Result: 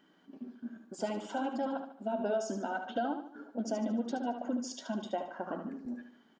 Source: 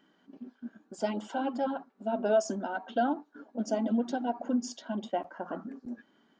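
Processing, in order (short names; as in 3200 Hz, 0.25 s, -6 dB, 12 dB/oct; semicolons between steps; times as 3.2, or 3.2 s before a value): compressor 2.5:1, threshold -32 dBFS, peak gain reduction 8 dB; on a send: feedback echo 74 ms, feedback 41%, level -8 dB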